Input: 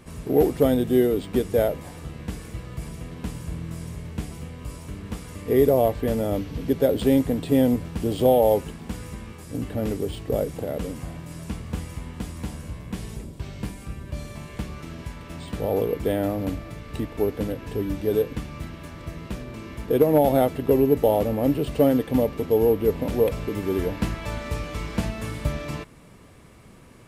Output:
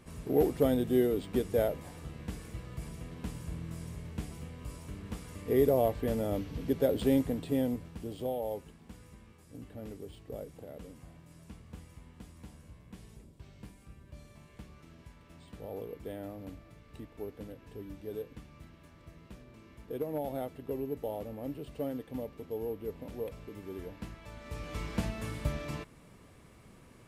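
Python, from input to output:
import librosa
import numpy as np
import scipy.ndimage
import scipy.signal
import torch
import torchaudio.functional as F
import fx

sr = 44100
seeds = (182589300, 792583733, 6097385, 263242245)

y = fx.gain(x, sr, db=fx.line((7.16, -7.5), (8.34, -17.5), (24.34, -17.5), (24.76, -7.0)))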